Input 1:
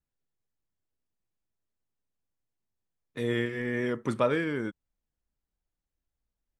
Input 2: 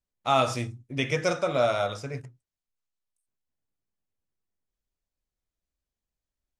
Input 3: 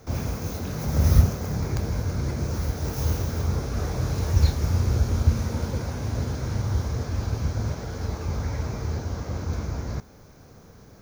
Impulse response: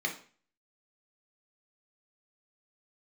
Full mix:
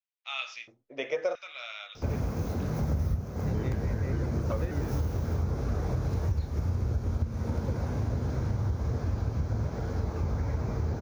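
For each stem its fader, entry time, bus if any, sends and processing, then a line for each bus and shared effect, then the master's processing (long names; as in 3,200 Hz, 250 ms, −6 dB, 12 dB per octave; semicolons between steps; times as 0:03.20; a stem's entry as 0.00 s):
−5.5 dB, 0.30 s, no send, pitch modulation by a square or saw wave square 5.1 Hz, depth 160 cents
−1.5 dB, 0.00 s, no send, elliptic low-pass filter 6,300 Hz; auto-filter high-pass square 0.74 Hz 550–2,600 Hz
+1.0 dB, 1.95 s, no send, no processing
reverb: not used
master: high-shelf EQ 2,200 Hz −11.5 dB; downward compressor 10 to 1, threshold −25 dBFS, peak gain reduction 17 dB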